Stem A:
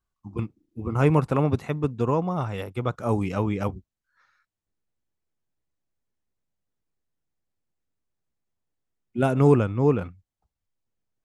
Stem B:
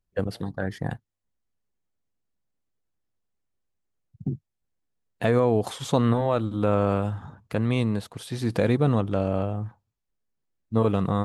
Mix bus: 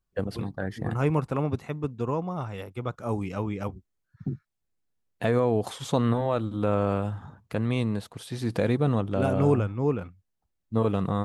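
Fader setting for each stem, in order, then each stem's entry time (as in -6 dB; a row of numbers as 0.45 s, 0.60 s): -5.0 dB, -2.5 dB; 0.00 s, 0.00 s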